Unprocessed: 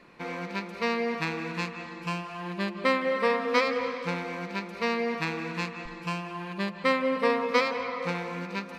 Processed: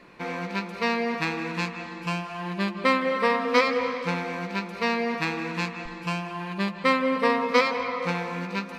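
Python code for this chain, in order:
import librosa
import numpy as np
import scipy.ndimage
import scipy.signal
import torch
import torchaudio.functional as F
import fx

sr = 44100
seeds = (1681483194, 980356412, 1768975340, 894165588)

y = fx.doubler(x, sr, ms=16.0, db=-11)
y = F.gain(torch.from_numpy(y), 3.0).numpy()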